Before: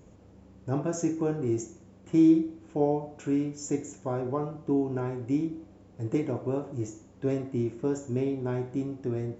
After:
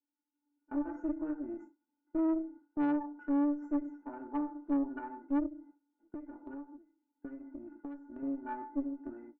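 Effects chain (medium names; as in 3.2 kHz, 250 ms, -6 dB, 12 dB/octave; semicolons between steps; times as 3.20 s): tracing distortion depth 0.03 ms; elliptic band-pass 220–1500 Hz, stop band 40 dB; tilt EQ +4 dB/octave; feedback comb 290 Hz, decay 0.19 s, harmonics odd, mix 100%; valve stage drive 43 dB, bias 0.6; comb 3.3 ms, depth 32%; gate with hold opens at -49 dBFS; 5.46–8.23 s: compression 10:1, threshold -56 dBFS, peak gain reduction 14 dB; distance through air 180 m; level rider gain up to 11.5 dB; trim +3.5 dB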